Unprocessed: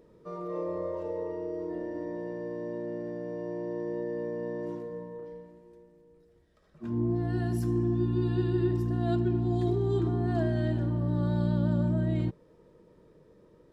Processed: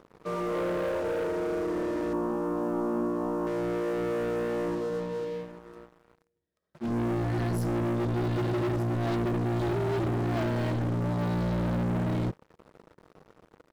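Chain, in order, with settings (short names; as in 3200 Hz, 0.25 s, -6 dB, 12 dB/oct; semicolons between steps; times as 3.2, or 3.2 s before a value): HPF 87 Hz 12 dB/oct; sample leveller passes 5; 2.13–3.47 graphic EQ 125/250/500/1000/2000/4000/8000 Hz -10/+10/-7/+11/-12/-10/-3 dB; gain -8.5 dB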